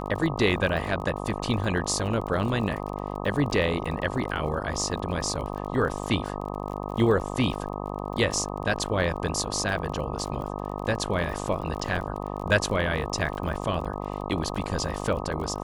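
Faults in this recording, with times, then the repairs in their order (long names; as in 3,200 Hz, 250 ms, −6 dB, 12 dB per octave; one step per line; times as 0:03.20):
mains buzz 50 Hz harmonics 25 −33 dBFS
surface crackle 31 per second −34 dBFS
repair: click removal
hum removal 50 Hz, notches 25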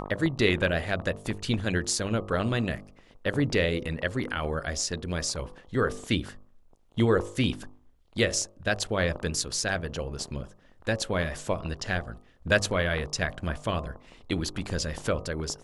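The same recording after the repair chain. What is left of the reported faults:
none of them is left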